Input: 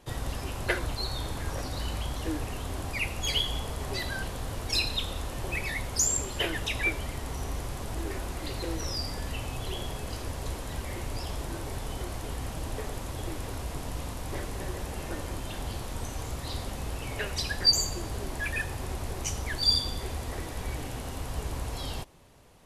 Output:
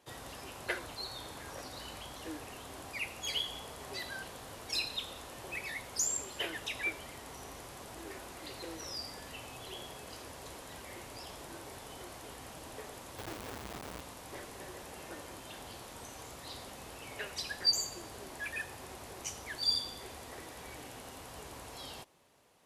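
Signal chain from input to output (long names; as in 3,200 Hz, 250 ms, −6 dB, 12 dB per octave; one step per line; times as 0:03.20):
0:13.18–0:14.01: each half-wave held at its own peak
high-pass filter 370 Hz 6 dB per octave
level −6.5 dB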